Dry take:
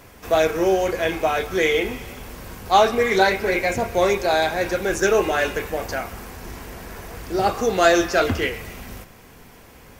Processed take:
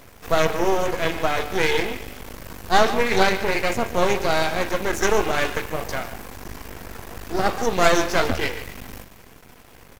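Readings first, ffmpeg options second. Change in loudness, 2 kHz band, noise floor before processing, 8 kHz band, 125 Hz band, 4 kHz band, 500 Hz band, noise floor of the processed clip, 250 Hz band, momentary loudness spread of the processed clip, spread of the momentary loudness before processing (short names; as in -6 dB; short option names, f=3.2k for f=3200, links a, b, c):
-1.5 dB, -1.0 dB, -47 dBFS, +0.5 dB, +1.0 dB, +0.5 dB, -3.0 dB, -47 dBFS, -1.5 dB, 19 LU, 19 LU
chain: -af "aecho=1:1:144:0.224,aeval=exprs='max(val(0),0)':c=same,volume=2.5dB"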